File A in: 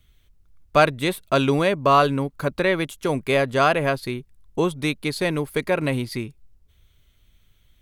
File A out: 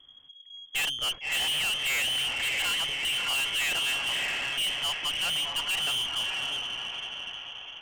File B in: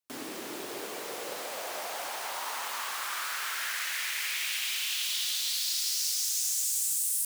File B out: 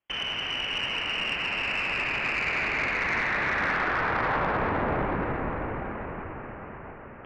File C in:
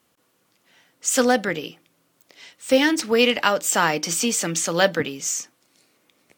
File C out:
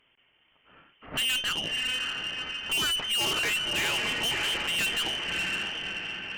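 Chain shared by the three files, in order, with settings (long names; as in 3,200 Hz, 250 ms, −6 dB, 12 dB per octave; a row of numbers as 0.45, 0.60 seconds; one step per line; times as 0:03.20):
feedback delay with all-pass diffusion 615 ms, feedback 49%, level −9 dB
voice inversion scrambler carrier 3,300 Hz
tube saturation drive 28 dB, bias 0.3
loudness normalisation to −27 LKFS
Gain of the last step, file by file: +1.5, +10.5, +2.5 decibels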